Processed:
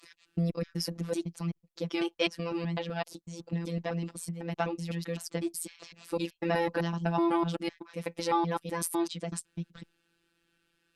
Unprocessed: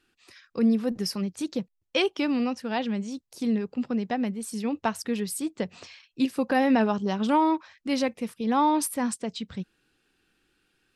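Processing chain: slices in reverse order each 0.126 s, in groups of 3; robotiser 169 Hz; gain -1.5 dB; Opus 64 kbps 48000 Hz

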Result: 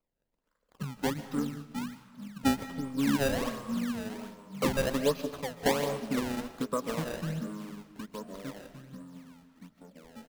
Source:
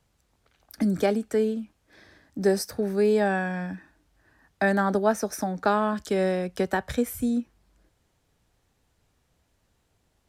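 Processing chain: echoes that change speed 0.142 s, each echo -3 st, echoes 3, each echo -6 dB; fixed phaser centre 780 Hz, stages 8; in parallel at -11.5 dB: overloaded stage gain 24 dB; on the sum: bell 110 Hz -13.5 dB 1.4 oct; pitch shift -7 st; decimation with a swept rate 23×, swing 160% 1.3 Hz; on a send at -7.5 dB: reverb RT60 1.1 s, pre-delay 0.1 s; on the sum: upward expander 1.5:1, over -41 dBFS; gain -1.5 dB

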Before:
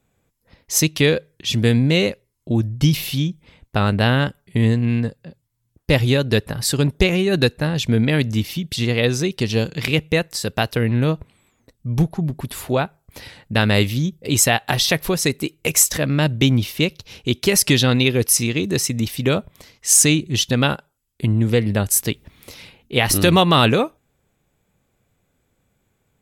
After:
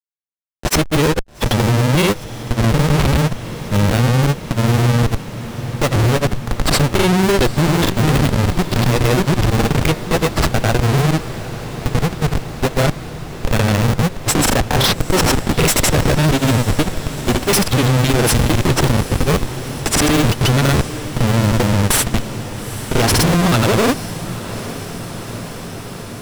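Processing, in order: HPF 84 Hz 24 dB/oct; notch 6500 Hz, Q 6.5; Schmitt trigger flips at -20 dBFS; grains; on a send: diffused feedback echo 0.856 s, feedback 77%, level -14 dB; on the sum: gain +8 dB

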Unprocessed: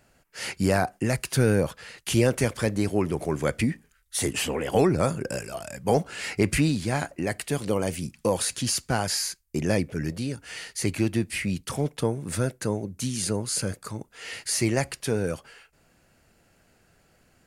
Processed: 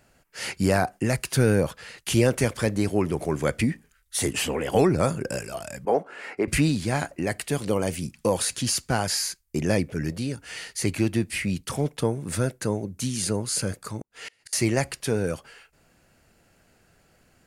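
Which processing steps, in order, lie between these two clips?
5.85–6.48 three-band isolator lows -24 dB, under 260 Hz, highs -18 dB, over 2000 Hz; 14–14.53 flipped gate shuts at -27 dBFS, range -30 dB; gain +1 dB

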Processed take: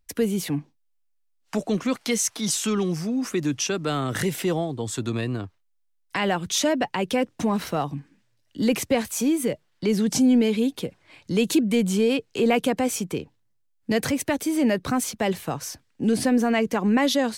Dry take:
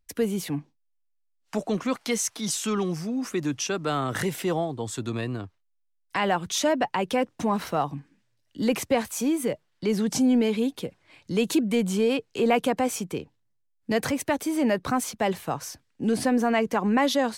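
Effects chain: dynamic EQ 950 Hz, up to -6 dB, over -38 dBFS, Q 0.88; gain +3.5 dB

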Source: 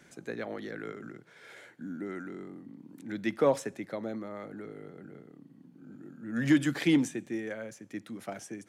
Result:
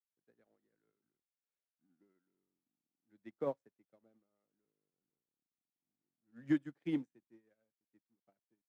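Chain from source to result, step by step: high shelf 2100 Hz -11.5 dB; crossover distortion -54.5 dBFS; upward expander 2.5:1, over -43 dBFS; gain -6.5 dB

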